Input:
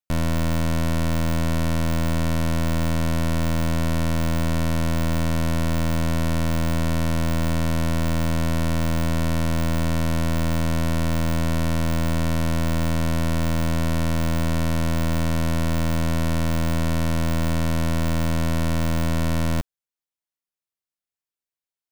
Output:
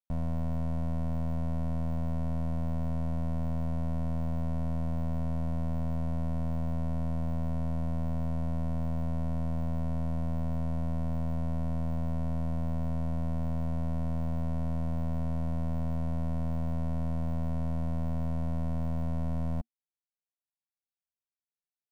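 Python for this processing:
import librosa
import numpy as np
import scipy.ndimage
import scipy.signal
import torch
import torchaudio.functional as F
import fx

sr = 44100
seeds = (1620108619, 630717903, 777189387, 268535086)

y = fx.curve_eq(x, sr, hz=(230.0, 330.0, 740.0, 1400.0, 3800.0), db=(0, -12, 0, -14, -20))
y = y * librosa.db_to_amplitude(-8.5)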